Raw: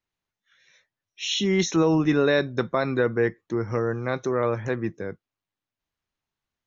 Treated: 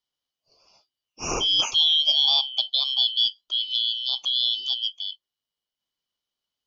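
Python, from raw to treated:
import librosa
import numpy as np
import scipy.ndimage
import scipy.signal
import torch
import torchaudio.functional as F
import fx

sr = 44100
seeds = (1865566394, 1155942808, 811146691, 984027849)

y = fx.band_shuffle(x, sr, order='3412')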